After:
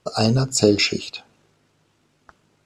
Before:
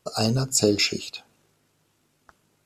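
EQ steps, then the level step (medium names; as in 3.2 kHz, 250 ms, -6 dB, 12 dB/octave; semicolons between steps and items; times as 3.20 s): distance through air 63 m; +5.0 dB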